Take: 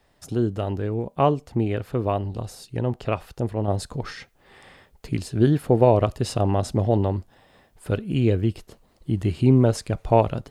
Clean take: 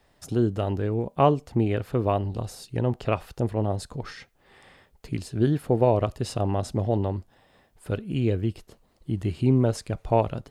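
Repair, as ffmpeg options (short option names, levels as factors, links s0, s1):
-af "asetnsamples=n=441:p=0,asendcmd='3.68 volume volume -4dB',volume=1"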